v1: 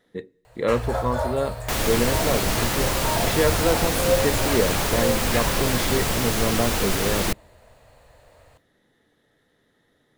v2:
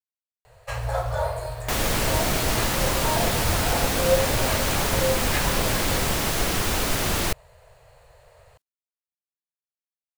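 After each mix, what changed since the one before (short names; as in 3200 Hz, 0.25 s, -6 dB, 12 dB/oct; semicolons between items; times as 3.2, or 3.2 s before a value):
speech: muted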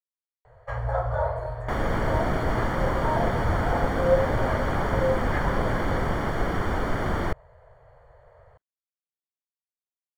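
master: add polynomial smoothing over 41 samples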